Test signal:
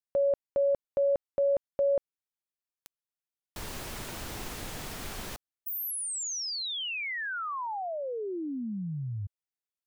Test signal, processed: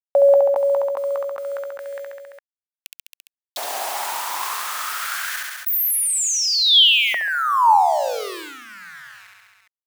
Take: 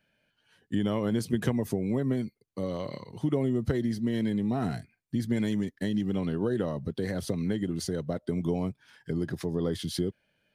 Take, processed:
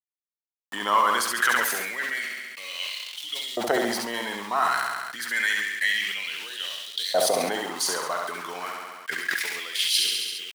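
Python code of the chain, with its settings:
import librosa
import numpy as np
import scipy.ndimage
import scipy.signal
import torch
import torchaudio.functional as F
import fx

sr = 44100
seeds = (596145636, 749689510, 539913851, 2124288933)

y = fx.high_shelf(x, sr, hz=7100.0, db=5.5)
y = np.where(np.abs(y) >= 10.0 ** (-43.5 / 20.0), y, 0.0)
y = fx.filter_lfo_highpass(y, sr, shape='saw_up', hz=0.28, low_hz=670.0, high_hz=3800.0, q=4.8)
y = fx.echo_feedback(y, sr, ms=68, feedback_pct=51, wet_db=-6.5)
y = fx.sustainer(y, sr, db_per_s=32.0)
y = y * 10.0 ** (8.5 / 20.0)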